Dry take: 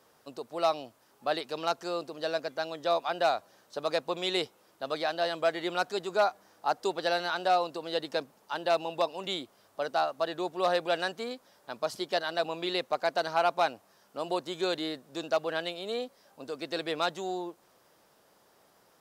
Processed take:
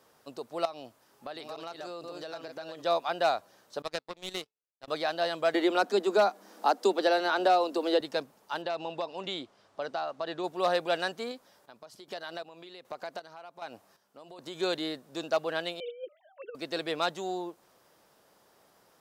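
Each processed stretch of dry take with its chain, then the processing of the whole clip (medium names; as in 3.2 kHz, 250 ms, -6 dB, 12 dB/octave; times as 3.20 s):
0.65–2.82 s: chunks repeated in reverse 458 ms, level -7 dB + compression 5:1, threshold -37 dBFS
3.82–4.88 s: de-hum 434.3 Hz, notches 32 + power-law waveshaper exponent 2
5.54–8.01 s: steep high-pass 200 Hz 96 dB/octave + bass shelf 410 Hz +11 dB + three bands compressed up and down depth 70%
8.62–10.44 s: low-pass 5.9 kHz + compression 4:1, threshold -29 dBFS
11.31–14.59 s: compression 4:1, threshold -36 dBFS + square tremolo 1.3 Hz, depth 65%, duty 45%
15.80–16.55 s: formants replaced by sine waves + compressor with a negative ratio -38 dBFS, ratio -0.5
whole clip: none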